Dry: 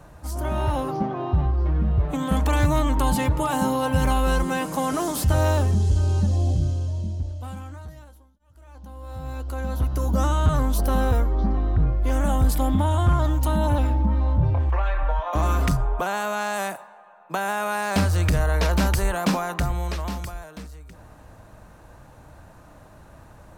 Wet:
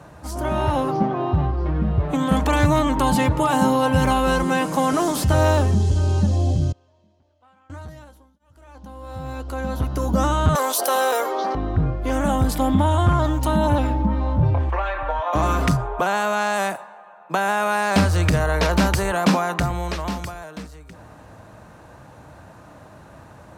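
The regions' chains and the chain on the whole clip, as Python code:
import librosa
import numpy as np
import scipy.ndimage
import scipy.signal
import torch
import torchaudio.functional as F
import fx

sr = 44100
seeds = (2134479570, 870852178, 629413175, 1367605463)

y = fx.chain(x, sr, fx.lowpass(hz=1400.0, slope=12),
    fx.differentiator(), at=(6.72, 7.7))
y = fx.chain(y, sr, fx.highpass(hz=440.0, slope=24),
    fx.high_shelf(hz=4600.0, db=11.5),
    fx.env_flatten(amount_pct=50), at=(10.55, 11.55))
y = scipy.signal.sosfilt(scipy.signal.butter(2, 92.0, 'highpass', fs=sr, output='sos'), y)
y = fx.high_shelf(y, sr, hz=11000.0, db=-10.5)
y = y * 10.0 ** (5.0 / 20.0)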